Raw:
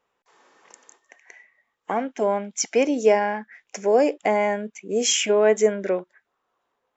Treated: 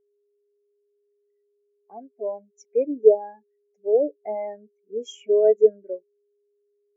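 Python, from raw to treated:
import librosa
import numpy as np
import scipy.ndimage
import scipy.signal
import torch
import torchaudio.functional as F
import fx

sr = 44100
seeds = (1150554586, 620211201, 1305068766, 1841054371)

y = fx.env_lowpass_down(x, sr, base_hz=900.0, full_db=-13.0, at=(2.82, 4.21))
y = y + 10.0 ** (-37.0 / 20.0) * np.sin(2.0 * np.pi * 410.0 * np.arange(len(y)) / sr)
y = fx.spectral_expand(y, sr, expansion=2.5)
y = y * 10.0 ** (3.5 / 20.0)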